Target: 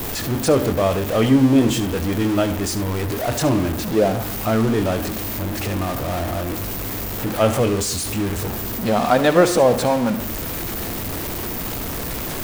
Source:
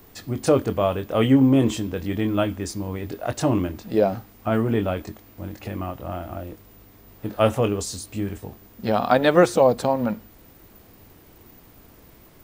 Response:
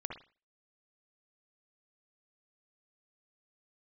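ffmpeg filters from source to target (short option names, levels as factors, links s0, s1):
-filter_complex "[0:a]aeval=exprs='val(0)+0.5*0.0841*sgn(val(0))':c=same,asplit=2[s0][s1];[1:a]atrim=start_sample=2205,adelay=71[s2];[s1][s2]afir=irnorm=-1:irlink=0,volume=0.299[s3];[s0][s3]amix=inputs=2:normalize=0"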